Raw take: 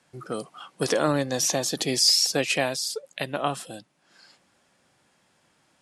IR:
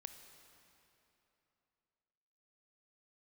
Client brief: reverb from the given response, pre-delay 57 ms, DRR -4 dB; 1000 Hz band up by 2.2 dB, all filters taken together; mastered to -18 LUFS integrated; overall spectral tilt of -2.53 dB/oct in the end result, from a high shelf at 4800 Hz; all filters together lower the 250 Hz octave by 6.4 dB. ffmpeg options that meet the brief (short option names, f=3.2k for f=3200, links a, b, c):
-filter_complex "[0:a]equalizer=f=250:t=o:g=-8.5,equalizer=f=1k:t=o:g=3.5,highshelf=f=4.8k:g=4.5,asplit=2[a][b];[1:a]atrim=start_sample=2205,adelay=57[c];[b][c]afir=irnorm=-1:irlink=0,volume=9dB[d];[a][d]amix=inputs=2:normalize=0,volume=-1.5dB"